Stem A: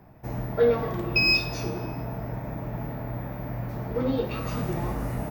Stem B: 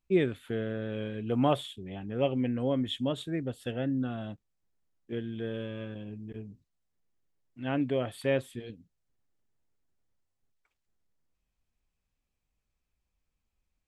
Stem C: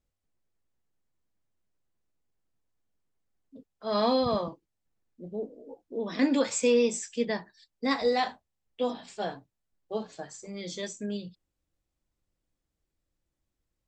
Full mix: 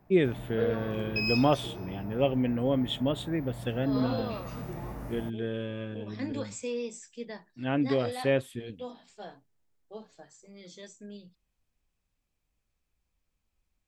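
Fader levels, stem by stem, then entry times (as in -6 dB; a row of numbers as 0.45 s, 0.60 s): -9.5 dB, +2.0 dB, -11.0 dB; 0.00 s, 0.00 s, 0.00 s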